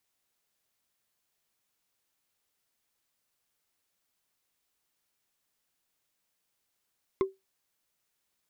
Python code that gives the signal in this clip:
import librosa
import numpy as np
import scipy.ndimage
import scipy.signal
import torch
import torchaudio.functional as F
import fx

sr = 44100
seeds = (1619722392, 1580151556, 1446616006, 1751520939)

y = fx.strike_wood(sr, length_s=0.45, level_db=-19, body='bar', hz=385.0, decay_s=0.19, tilt_db=7.5, modes=5)